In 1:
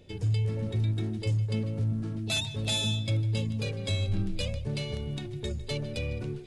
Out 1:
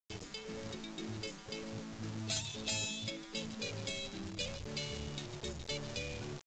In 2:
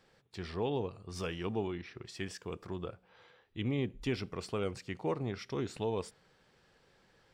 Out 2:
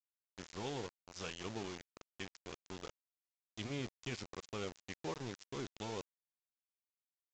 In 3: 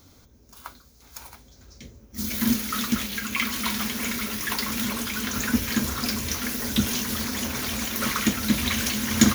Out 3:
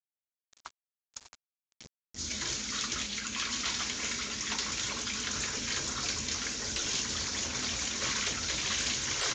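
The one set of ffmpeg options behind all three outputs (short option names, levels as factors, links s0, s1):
-af "aeval=exprs='val(0)*gte(abs(val(0)),0.0141)':c=same,highshelf=f=3500:g=11,aresample=16000,aresample=44100,afftfilt=real='re*lt(hypot(re,im),0.224)':imag='im*lt(hypot(re,im),0.224)':win_size=1024:overlap=0.75,volume=0.422"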